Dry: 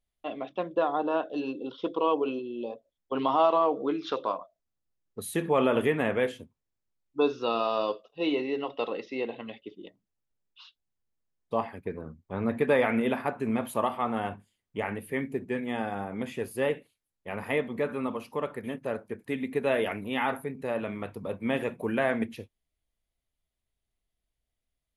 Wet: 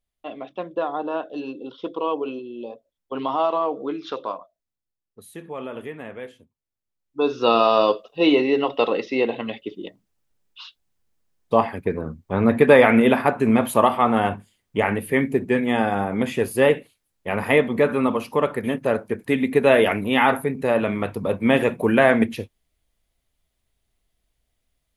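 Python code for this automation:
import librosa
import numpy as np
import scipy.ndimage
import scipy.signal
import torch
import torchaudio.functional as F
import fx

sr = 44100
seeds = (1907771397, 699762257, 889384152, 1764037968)

y = fx.gain(x, sr, db=fx.line((4.31, 1.0), (5.3, -9.0), (6.37, -9.0), (7.19, 2.0), (7.47, 11.0)))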